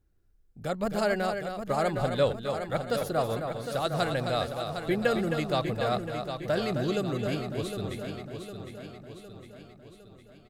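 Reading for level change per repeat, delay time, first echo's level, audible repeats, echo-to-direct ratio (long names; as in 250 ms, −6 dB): repeats not evenly spaced, 264 ms, −7.0 dB, 10, −3.5 dB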